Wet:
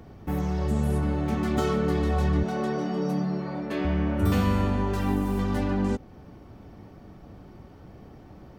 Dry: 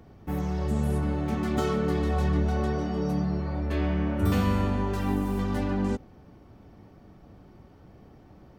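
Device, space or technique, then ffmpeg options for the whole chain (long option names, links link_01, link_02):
parallel compression: -filter_complex "[0:a]asplit=2[link_01][link_02];[link_02]acompressor=threshold=-36dB:ratio=6,volume=-3dB[link_03];[link_01][link_03]amix=inputs=2:normalize=0,asettb=1/sr,asplit=3[link_04][link_05][link_06];[link_04]atrim=end=2.434[link_07];[link_05]atrim=start=2.43:end=3.85,asetpts=PTS-STARTPTS,afade=type=in:duration=0.004:curve=qsin,afade=type=out:start_time=1.416:duration=0.004:curve=qsin,highpass=frequency=150:width=0.5412,highpass=frequency=150:width=1.3066[link_08];[link_06]atrim=start=3.846[link_09];[link_07][link_08]acrossfade=duration=0.004:curve1=hsin:curve2=qsin[link_10];[link_10][link_09]acrossfade=duration=0.004:curve1=qsin:curve2=hsin"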